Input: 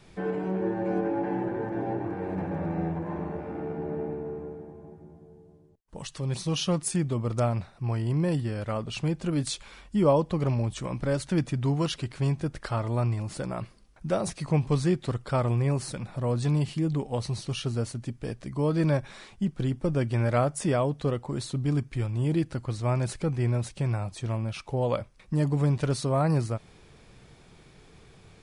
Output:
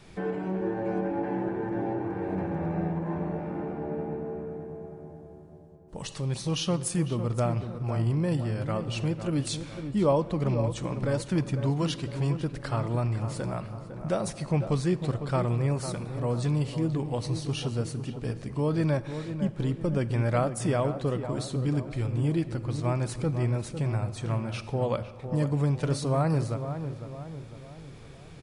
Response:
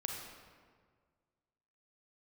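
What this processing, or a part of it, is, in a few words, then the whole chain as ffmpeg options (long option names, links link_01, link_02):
ducked reverb: -filter_complex "[0:a]asplit=3[link_01][link_02][link_03];[1:a]atrim=start_sample=2205[link_04];[link_02][link_04]afir=irnorm=-1:irlink=0[link_05];[link_03]apad=whole_len=1253480[link_06];[link_05][link_06]sidechaincompress=threshold=-35dB:ratio=4:attack=6.7:release=1360,volume=0.5dB[link_07];[link_01][link_07]amix=inputs=2:normalize=0,asettb=1/sr,asplit=3[link_08][link_09][link_10];[link_08]atrim=end=24.194[link_11];[link_09]atrim=start=24.19:end=24.6,asetpts=PTS-STARTPTS,afade=type=in:duration=0.004:curve=qsin,afade=type=out:start_time=0.406:duration=0.004:curve=qsin,equalizer=frequency=1400:width=1.5:gain=5[link_12];[link_10]atrim=start=24.596[link_13];[link_11][link_12]acrossfade=duration=0.004:curve1=hsin:curve2=qsin[link_14];[link_14][link_13]acrossfade=duration=0.004:curve1=qsin:curve2=hsin,asplit=2[link_15][link_16];[link_16]adelay=503,lowpass=frequency=1600:poles=1,volume=-9dB,asplit=2[link_17][link_18];[link_18]adelay=503,lowpass=frequency=1600:poles=1,volume=0.51,asplit=2[link_19][link_20];[link_20]adelay=503,lowpass=frequency=1600:poles=1,volume=0.51,asplit=2[link_21][link_22];[link_22]adelay=503,lowpass=frequency=1600:poles=1,volume=0.51,asplit=2[link_23][link_24];[link_24]adelay=503,lowpass=frequency=1600:poles=1,volume=0.51,asplit=2[link_25][link_26];[link_26]adelay=503,lowpass=frequency=1600:poles=1,volume=0.51[link_27];[link_15][link_17][link_19][link_21][link_23][link_25][link_27]amix=inputs=7:normalize=0,volume=-3dB"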